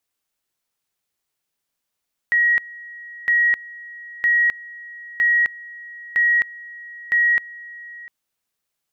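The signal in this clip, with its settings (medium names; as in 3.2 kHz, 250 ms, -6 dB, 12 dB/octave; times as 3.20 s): two-level tone 1.9 kHz -13.5 dBFS, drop 21 dB, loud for 0.26 s, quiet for 0.70 s, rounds 6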